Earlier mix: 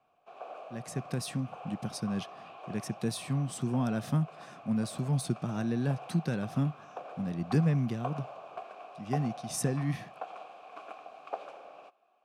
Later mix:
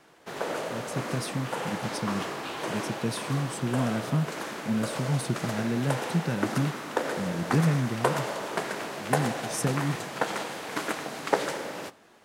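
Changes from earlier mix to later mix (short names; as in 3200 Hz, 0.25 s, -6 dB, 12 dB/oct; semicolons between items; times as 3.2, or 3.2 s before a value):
background: remove vowel filter a; reverb: on, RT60 0.35 s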